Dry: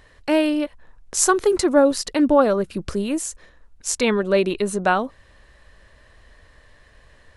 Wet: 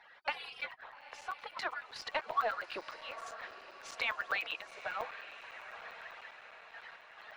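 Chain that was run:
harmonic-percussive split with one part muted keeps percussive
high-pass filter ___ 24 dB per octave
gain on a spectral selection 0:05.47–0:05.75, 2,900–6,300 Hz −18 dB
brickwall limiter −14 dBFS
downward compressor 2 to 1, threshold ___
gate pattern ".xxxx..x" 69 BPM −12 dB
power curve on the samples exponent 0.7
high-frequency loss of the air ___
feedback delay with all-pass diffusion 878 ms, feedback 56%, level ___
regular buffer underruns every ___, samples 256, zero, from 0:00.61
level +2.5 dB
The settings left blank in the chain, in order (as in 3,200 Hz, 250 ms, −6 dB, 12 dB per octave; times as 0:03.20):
730 Hz, −39 dBFS, 310 metres, −12.5 dB, 0.10 s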